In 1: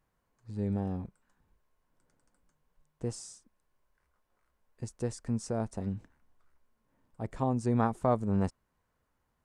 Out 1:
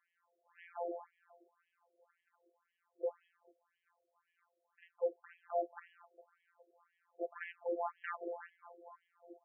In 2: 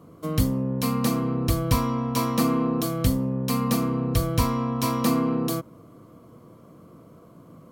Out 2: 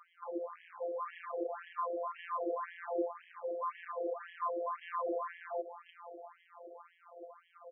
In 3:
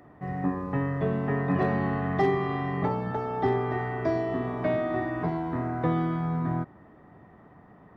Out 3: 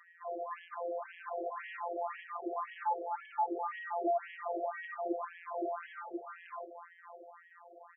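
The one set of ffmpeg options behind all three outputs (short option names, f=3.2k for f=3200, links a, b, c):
-filter_complex "[0:a]acrossover=split=3400[a][b];[b]acompressor=threshold=-41dB:ratio=4:attack=1:release=60[c];[a][c]amix=inputs=2:normalize=0,alimiter=limit=-19.5dB:level=0:latency=1:release=51,asplit=7[d][e][f][g][h][i][j];[e]adelay=410,afreqshift=-92,volume=-19dB[k];[f]adelay=820,afreqshift=-184,volume=-22.9dB[l];[g]adelay=1230,afreqshift=-276,volume=-26.8dB[m];[h]adelay=1640,afreqshift=-368,volume=-30.6dB[n];[i]adelay=2050,afreqshift=-460,volume=-34.5dB[o];[j]adelay=2460,afreqshift=-552,volume=-38.4dB[p];[d][k][l][m][n][o][p]amix=inputs=7:normalize=0,acrossover=split=100|1300[q][r][s];[q]acompressor=threshold=-43dB:ratio=4[t];[r]acompressor=threshold=-28dB:ratio=4[u];[s]acompressor=threshold=-52dB:ratio=4[v];[t][u][v]amix=inputs=3:normalize=0,aeval=exprs='0.0668*(abs(mod(val(0)/0.0668+3,4)-2)-1)':c=same,afftfilt=real='hypot(re,im)*cos(PI*b)':imag='0':win_size=1024:overlap=0.75,aeval=exprs='clip(val(0),-1,0.0398)':c=same,afftfilt=real='re*between(b*sr/1024,480*pow(2400/480,0.5+0.5*sin(2*PI*1.9*pts/sr))/1.41,480*pow(2400/480,0.5+0.5*sin(2*PI*1.9*pts/sr))*1.41)':imag='im*between(b*sr/1024,480*pow(2400/480,0.5+0.5*sin(2*PI*1.9*pts/sr))/1.41,480*pow(2400/480,0.5+0.5*sin(2*PI*1.9*pts/sr))*1.41)':win_size=1024:overlap=0.75,volume=9dB"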